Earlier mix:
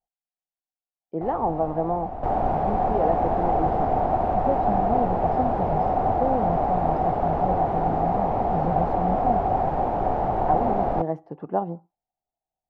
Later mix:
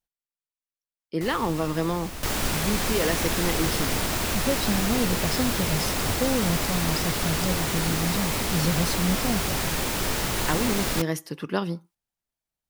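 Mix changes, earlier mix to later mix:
speech +4.0 dB
master: remove low-pass with resonance 750 Hz, resonance Q 8.5

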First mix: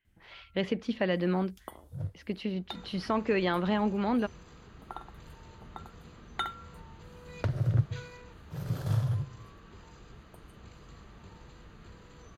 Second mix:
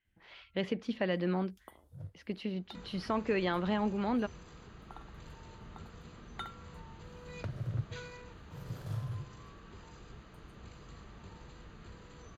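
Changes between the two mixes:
speech −3.5 dB
first sound −9.5 dB

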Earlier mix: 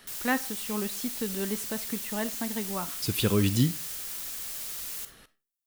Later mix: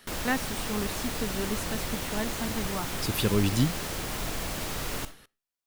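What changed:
speech: send −11.0 dB
background: remove first-order pre-emphasis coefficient 0.97

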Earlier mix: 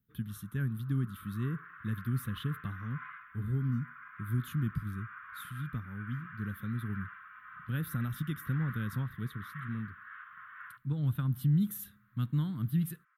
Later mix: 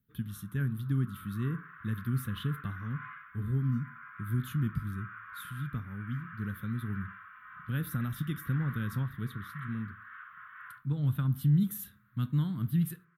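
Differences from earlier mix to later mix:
background −5.0 dB
reverb: on, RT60 0.40 s

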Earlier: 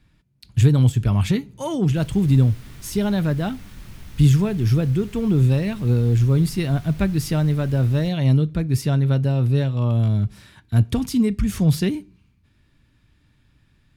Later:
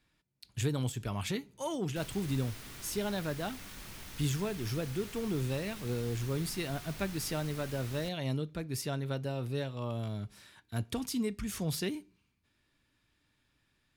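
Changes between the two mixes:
speech −8.0 dB
master: add bass and treble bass −12 dB, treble +3 dB

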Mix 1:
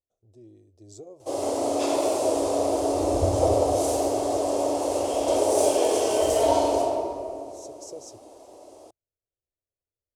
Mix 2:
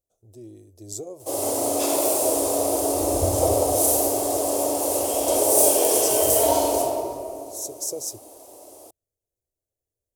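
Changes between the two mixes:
speech +7.0 dB
master: remove high-frequency loss of the air 96 metres

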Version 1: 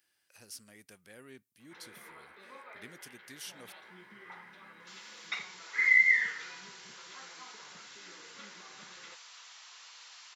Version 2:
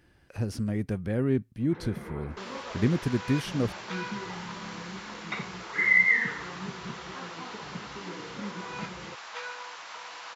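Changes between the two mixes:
first sound −9.0 dB
second sound: entry −2.50 s
master: remove first difference

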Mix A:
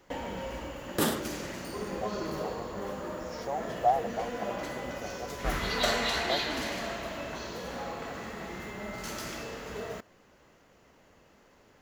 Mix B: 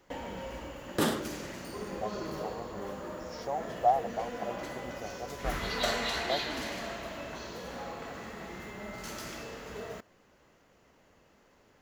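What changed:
first sound −3.0 dB
second sound: add high-shelf EQ 10,000 Hz −10.5 dB

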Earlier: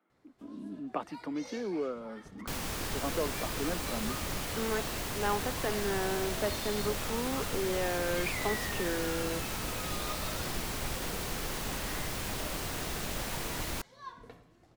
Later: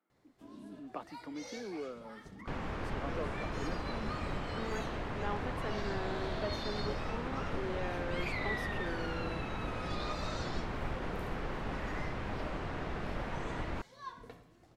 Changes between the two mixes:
speech −7.5 dB
second sound: add low-pass filter 1,800 Hz 12 dB per octave

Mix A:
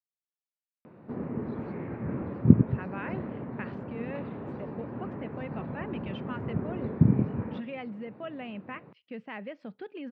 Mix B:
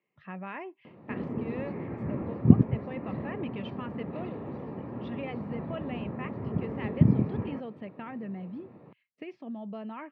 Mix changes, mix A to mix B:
speech: entry −2.50 s
master: add notch filter 1,500 Hz, Q 6.9

